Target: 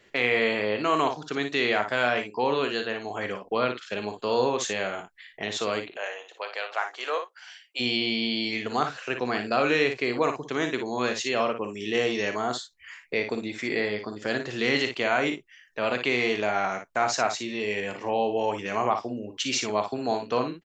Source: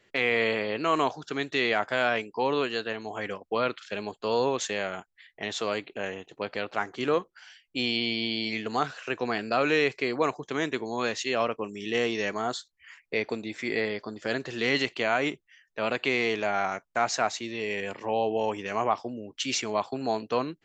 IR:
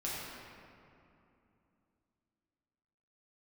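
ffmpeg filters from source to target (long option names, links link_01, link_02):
-filter_complex "[0:a]asplit=2[link_01][link_02];[link_02]acompressor=threshold=-43dB:ratio=6,volume=-2dB[link_03];[link_01][link_03]amix=inputs=2:normalize=0,asplit=3[link_04][link_05][link_06];[link_04]afade=type=out:start_time=5.95:duration=0.02[link_07];[link_05]highpass=frequency=560:width=0.5412,highpass=frequency=560:width=1.3066,afade=type=in:start_time=5.95:duration=0.02,afade=type=out:start_time=7.79:duration=0.02[link_08];[link_06]afade=type=in:start_time=7.79:duration=0.02[link_09];[link_07][link_08][link_09]amix=inputs=3:normalize=0,aecho=1:1:40|57:0.224|0.398"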